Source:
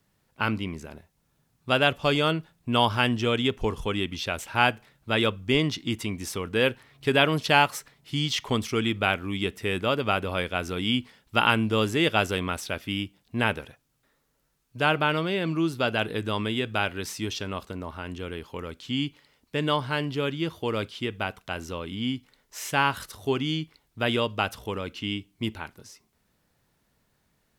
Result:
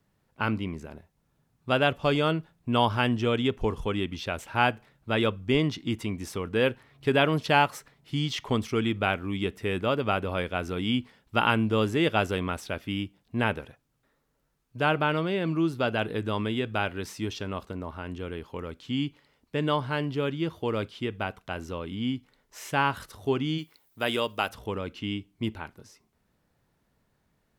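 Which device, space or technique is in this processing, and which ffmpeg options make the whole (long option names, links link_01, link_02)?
behind a face mask: -filter_complex "[0:a]highshelf=frequency=2200:gain=-7.5,asplit=3[link_01][link_02][link_03];[link_01]afade=type=out:start_time=23.57:duration=0.02[link_04];[link_02]aemphasis=mode=production:type=bsi,afade=type=in:start_time=23.57:duration=0.02,afade=type=out:start_time=24.48:duration=0.02[link_05];[link_03]afade=type=in:start_time=24.48:duration=0.02[link_06];[link_04][link_05][link_06]amix=inputs=3:normalize=0"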